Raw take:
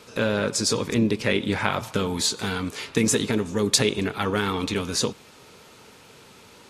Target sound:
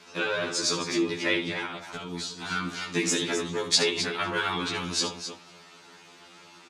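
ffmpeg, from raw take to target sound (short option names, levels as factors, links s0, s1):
-filter_complex "[0:a]highpass=f=310:p=1,asplit=2[s0][s1];[s1]aecho=0:1:239:0.0668[s2];[s0][s2]amix=inputs=2:normalize=0,asettb=1/sr,asplit=3[s3][s4][s5];[s3]atrim=end=1.514[s6];[s4]atrim=start=1.51:end=2.51,asetpts=PTS-STARTPTS,afade=t=in:d=0.004:c=qsin,afade=t=out:st=0.996:d=0.004:c=qsin,acompressor=threshold=0.0282:ratio=10[s7];[s5]atrim=start=2.506[s8];[s6][s7]acrossfade=d=0.004:c1=hsin:c2=qsin[s9];[s9][s8]acrossfade=d=0.004:c1=qsin:c2=hsin,lowpass=6600,bandreject=f=510:w=12,aecho=1:1:6:0.35,asplit=2[s10][s11];[s11]aecho=0:1:69.97|262.4:0.282|0.316[s12];[s10][s12]amix=inputs=2:normalize=0,afftfilt=real='re*2*eq(mod(b,4),0)':imag='im*2*eq(mod(b,4),0)':win_size=2048:overlap=0.75,volume=1.19"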